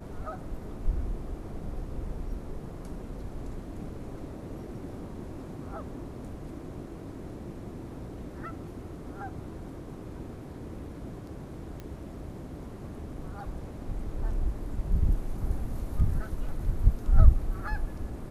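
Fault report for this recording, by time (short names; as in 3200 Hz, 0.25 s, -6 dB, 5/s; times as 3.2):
11.8 pop -27 dBFS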